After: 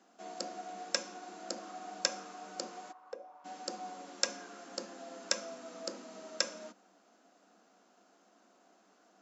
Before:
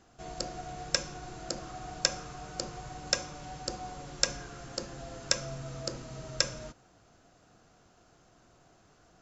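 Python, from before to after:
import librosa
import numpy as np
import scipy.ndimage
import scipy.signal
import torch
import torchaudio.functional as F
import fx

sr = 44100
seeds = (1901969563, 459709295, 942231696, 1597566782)

y = scipy.signal.sosfilt(scipy.signal.cheby1(6, 3, 190.0, 'highpass', fs=sr, output='sos'), x)
y = fx.auto_wah(y, sr, base_hz=450.0, top_hz=1400.0, q=4.0, full_db=-29.5, direction='down', at=(2.91, 3.44), fade=0.02)
y = y * librosa.db_to_amplitude(-1.5)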